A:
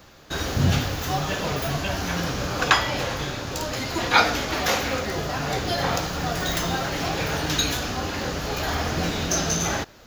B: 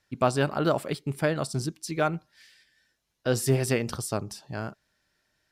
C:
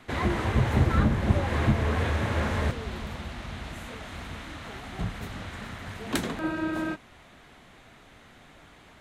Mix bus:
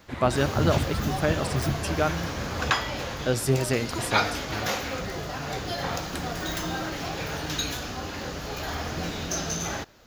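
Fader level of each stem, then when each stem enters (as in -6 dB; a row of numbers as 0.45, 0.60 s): -6.0, 0.0, -7.5 dB; 0.00, 0.00, 0.00 s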